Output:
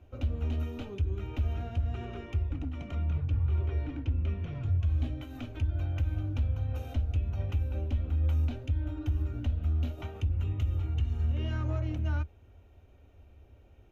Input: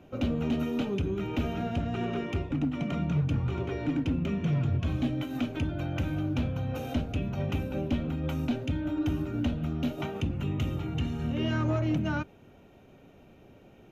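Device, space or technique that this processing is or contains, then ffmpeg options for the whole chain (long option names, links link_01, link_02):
car stereo with a boomy subwoofer: -filter_complex "[0:a]lowshelf=frequency=110:width_type=q:width=3:gain=12.5,alimiter=limit=-12.5dB:level=0:latency=1:release=109,asettb=1/sr,asplit=3[link_01][link_02][link_03];[link_01]atrim=end=2.954[link_04];[link_02]atrim=start=2.95:end=4.55,asetpts=PTS-STARTPTS,afade=type=in:duration=0.004:curve=qsin,afade=type=out:start_time=1.596:duration=0.004:curve=qsin,lowpass=4700[link_05];[link_03]atrim=start=4.546[link_06];[link_04][link_05]acrossfade=duration=0.004:curve1=hsin:curve2=qsin[link_07];[link_07][link_06]acrossfade=duration=0.004:curve1=qsin:curve2=hsin,volume=-8.5dB"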